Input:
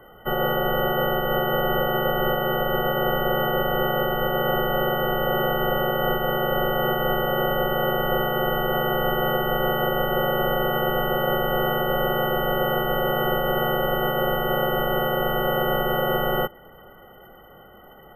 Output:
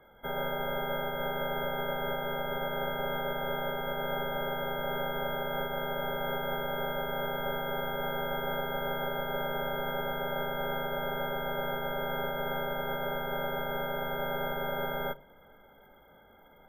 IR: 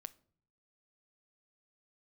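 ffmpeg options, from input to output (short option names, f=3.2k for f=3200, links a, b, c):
-filter_complex "[0:a]asetrate=48000,aresample=44100[a];[1:a]atrim=start_sample=2205,asetrate=79380,aresample=44100[b];[a][b]afir=irnorm=-1:irlink=0"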